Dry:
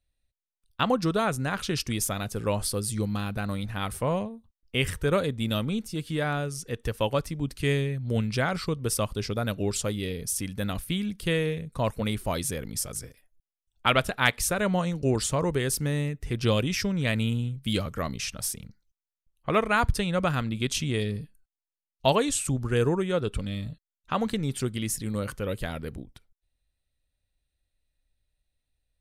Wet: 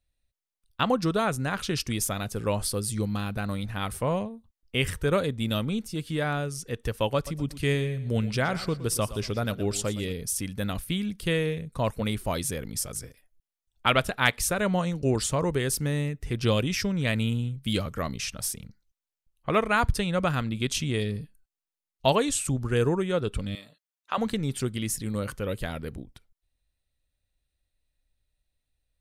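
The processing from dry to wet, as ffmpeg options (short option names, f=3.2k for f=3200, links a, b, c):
-filter_complex "[0:a]asettb=1/sr,asplit=3[a][b][c];[a]atrim=end=7.154[d];[b]atrim=start=7.15:end=10.13,asetpts=PTS-STARTPTS,afade=t=in:d=0.004:c=qsin,afade=t=out:st=2.976:d=0.004:c=qsin,aecho=1:1:117|234|351:0.178|0.0533|0.016,atrim=end_sample=131418[e];[c]atrim=start=10.126[f];[d][e]acrossfade=d=0.004:c1=hsin:c2=qsin[g];[g][f]acrossfade=d=0.004:c1=qsin:c2=hsin,asettb=1/sr,asplit=3[h][i][j];[h]atrim=end=23.554[k];[i]atrim=start=23.55:end=24.18,asetpts=PTS-STARTPTS,afade=t=in:d=0.004:c=qsin,afade=t=out:st=0.626:d=0.004:c=qsin,highpass=520[l];[j]atrim=start=24.176[m];[k][l]acrossfade=d=0.004:c1=hsin:c2=qsin[n];[n][m]acrossfade=d=0.004:c1=qsin:c2=hsin"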